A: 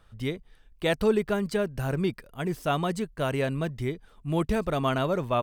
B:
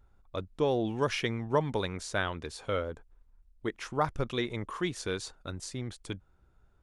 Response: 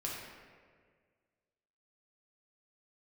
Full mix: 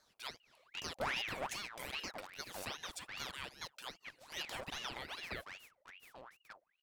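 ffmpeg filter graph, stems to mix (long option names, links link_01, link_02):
-filter_complex "[0:a]highpass=1400,acompressor=threshold=-38dB:ratio=10,volume=0.5dB[link_01];[1:a]aeval=exprs='abs(val(0))':channel_layout=same,adelay=400,volume=-8dB,afade=type=out:start_time=1.33:duration=0.33:silence=0.446684[link_02];[link_01][link_02]amix=inputs=2:normalize=0,aeval=exprs='val(0)*sin(2*PI*1700*n/s+1700*0.7/2.5*sin(2*PI*2.5*n/s))':channel_layout=same"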